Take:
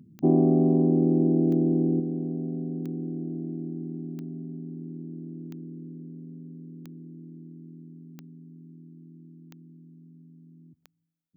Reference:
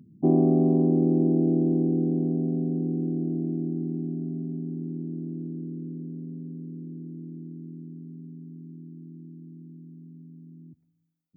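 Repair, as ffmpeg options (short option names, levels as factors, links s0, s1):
-af "adeclick=t=4,asetnsamples=n=441:p=0,asendcmd='2 volume volume 5dB',volume=1"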